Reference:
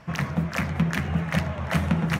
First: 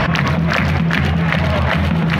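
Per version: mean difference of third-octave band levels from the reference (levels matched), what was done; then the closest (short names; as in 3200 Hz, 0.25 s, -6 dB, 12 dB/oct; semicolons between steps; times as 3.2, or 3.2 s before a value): 5.0 dB: resonant high shelf 5200 Hz -10.5 dB, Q 1.5; on a send: thin delay 0.117 s, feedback 60%, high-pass 3900 Hz, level -4.5 dB; on the sum: fast leveller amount 100%; gain +2.5 dB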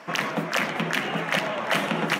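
8.0 dB: HPF 260 Hz 24 dB/oct; dynamic EQ 3000 Hz, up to +6 dB, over -48 dBFS, Q 2.4; limiter -17 dBFS, peak gain reduction 7.5 dB; gain +7 dB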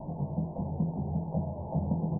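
12.5 dB: delta modulation 16 kbps, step -27 dBFS; steep low-pass 930 Hz 96 dB/oct; doubler 20 ms -6 dB; gain -6.5 dB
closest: first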